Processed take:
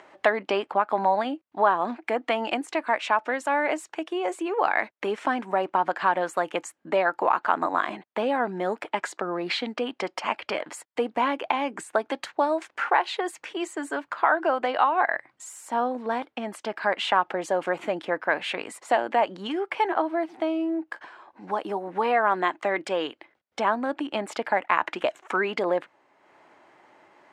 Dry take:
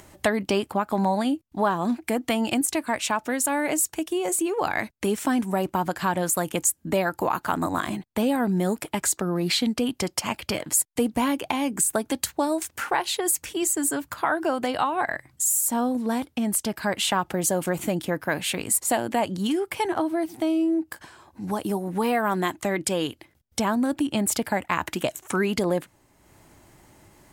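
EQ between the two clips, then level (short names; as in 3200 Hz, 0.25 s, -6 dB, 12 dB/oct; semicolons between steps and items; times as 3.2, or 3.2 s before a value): BPF 510–2300 Hz; +4.0 dB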